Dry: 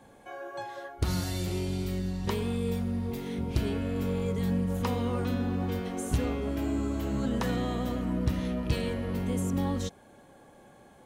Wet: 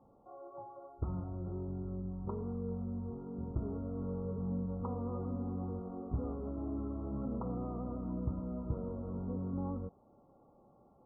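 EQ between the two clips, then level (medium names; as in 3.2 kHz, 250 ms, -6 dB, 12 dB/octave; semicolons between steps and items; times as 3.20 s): brick-wall FIR low-pass 1.4 kHz; distance through air 400 m; -8.0 dB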